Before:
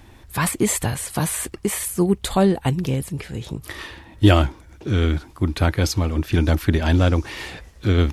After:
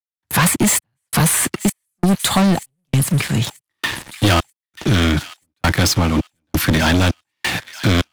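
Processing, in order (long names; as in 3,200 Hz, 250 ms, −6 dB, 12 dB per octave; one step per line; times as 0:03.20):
noise gate with hold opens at −34 dBFS
high-pass filter 110 Hz 24 dB per octave
parametric band 440 Hz −10.5 dB 0.98 octaves
leveller curve on the samples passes 5
gate pattern "..xxxxx." 133 BPM −60 dB
on a send: delay with a high-pass on its return 935 ms, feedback 32%, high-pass 1,700 Hz, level −18 dB
on the sum: multiband upward and downward compressor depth 40%
level −4 dB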